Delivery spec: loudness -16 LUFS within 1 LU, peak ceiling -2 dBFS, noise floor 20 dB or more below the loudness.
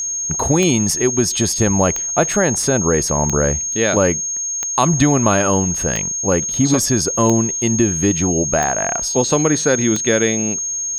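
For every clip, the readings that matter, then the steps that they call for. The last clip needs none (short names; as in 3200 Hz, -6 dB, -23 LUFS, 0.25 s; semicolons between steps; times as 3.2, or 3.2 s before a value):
clicks 8; steady tone 6500 Hz; tone level -20 dBFS; loudness -16.0 LUFS; peak -1.5 dBFS; loudness target -16.0 LUFS
-> de-click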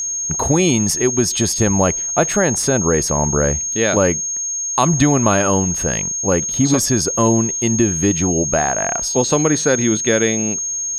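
clicks 0; steady tone 6500 Hz; tone level -20 dBFS
-> notch 6500 Hz, Q 30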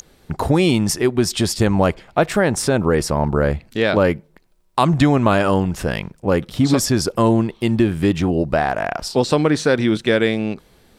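steady tone none; loudness -18.5 LUFS; peak -2.0 dBFS; loudness target -16.0 LUFS
-> gain +2.5 dB; limiter -2 dBFS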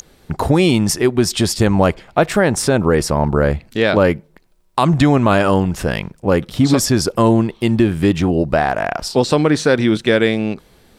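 loudness -16.0 LUFS; peak -2.0 dBFS; noise floor -52 dBFS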